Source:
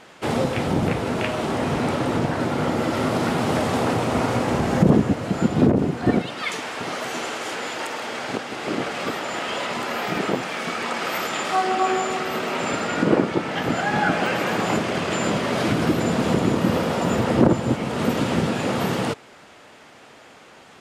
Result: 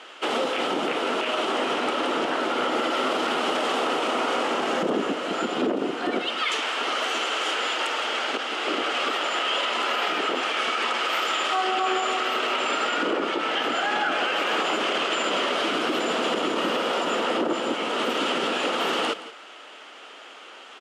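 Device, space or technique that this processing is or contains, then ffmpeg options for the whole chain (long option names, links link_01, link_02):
laptop speaker: -af "highpass=frequency=300:width=0.5412,highpass=frequency=300:width=1.3066,lowpass=9200,equalizer=frequency=1300:width_type=o:width=0.32:gain=7,equalizer=frequency=3000:width_type=o:width=0.44:gain=10.5,alimiter=limit=-16dB:level=0:latency=1:release=41,aecho=1:1:171:0.178"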